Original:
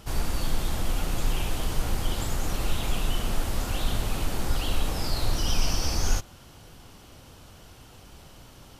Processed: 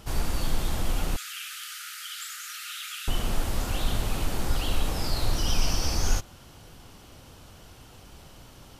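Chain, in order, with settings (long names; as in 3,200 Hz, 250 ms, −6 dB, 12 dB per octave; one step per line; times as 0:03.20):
0:01.16–0:03.08: linear-phase brick-wall high-pass 1,200 Hz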